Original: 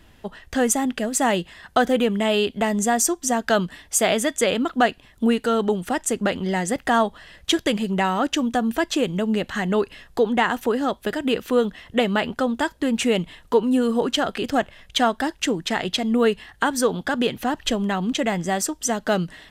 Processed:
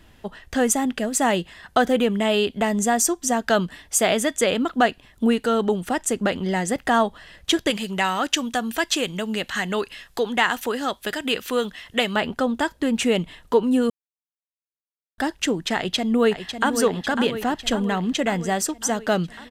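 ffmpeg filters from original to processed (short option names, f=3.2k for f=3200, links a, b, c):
-filter_complex "[0:a]asettb=1/sr,asplit=3[a][b][c];[a]atrim=end=7.704[d];[b]atrim=start=7.7:end=12.16,asetpts=PTS-STARTPTS,afade=t=in:d=0.004:c=qsin,afade=t=out:st=4.456:d=0.004:c=qsin,tiltshelf=f=1.1k:g=-6[e];[c]atrim=start=12.156[f];[d][e]acrossfade=d=0.004:c1=hsin:c2=qsin[g];[g][f]acrossfade=d=0.004:c1=qsin:c2=hsin,asplit=2[h][i];[i]afade=t=in:st=15.76:d=0.01,afade=t=out:st=16.72:d=0.01,aecho=0:1:550|1100|1650|2200|2750|3300|3850|4400|4950:0.375837|0.244294|0.158791|0.103214|0.0670893|0.0436081|0.0283452|0.0184244|0.0119759[j];[h][j]amix=inputs=2:normalize=0,asplit=3[k][l][m];[k]atrim=end=13.9,asetpts=PTS-STARTPTS,afade=t=out:st=13.896:d=0.004:c=hsin[n];[l]atrim=start=13.9:end=15.18,asetpts=PTS-STARTPTS,volume=0[o];[m]atrim=start=15.18,asetpts=PTS-STARTPTS,afade=t=in:d=0.004:c=hsin[p];[n][o][p]concat=n=3:v=0:a=1"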